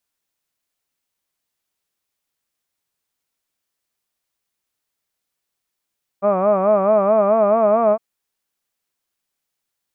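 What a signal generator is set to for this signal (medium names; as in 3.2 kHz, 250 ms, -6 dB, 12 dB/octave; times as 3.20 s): formant-synthesis vowel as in hud, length 1.76 s, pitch 193 Hz, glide +2.5 st, vibrato 4.6 Hz, vibrato depth 1.15 st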